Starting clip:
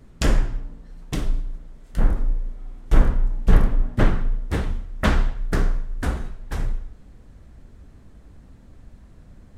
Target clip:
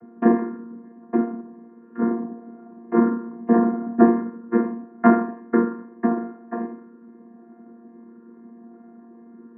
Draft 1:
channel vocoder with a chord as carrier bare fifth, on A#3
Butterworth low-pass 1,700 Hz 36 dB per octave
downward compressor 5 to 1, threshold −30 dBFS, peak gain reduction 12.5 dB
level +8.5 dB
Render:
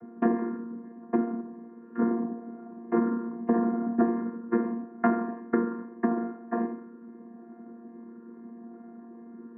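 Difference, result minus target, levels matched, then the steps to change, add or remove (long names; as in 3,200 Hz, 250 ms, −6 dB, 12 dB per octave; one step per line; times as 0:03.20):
downward compressor: peak gain reduction +12.5 dB
remove: downward compressor 5 to 1, threshold −30 dBFS, peak gain reduction 12.5 dB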